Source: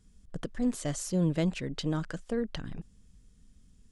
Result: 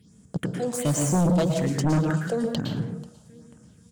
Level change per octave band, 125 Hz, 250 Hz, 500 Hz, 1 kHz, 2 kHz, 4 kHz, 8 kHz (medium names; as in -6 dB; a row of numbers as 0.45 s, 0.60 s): +9.5 dB, +6.5 dB, +8.5 dB, +12.5 dB, +7.0 dB, +5.0 dB, +9.5 dB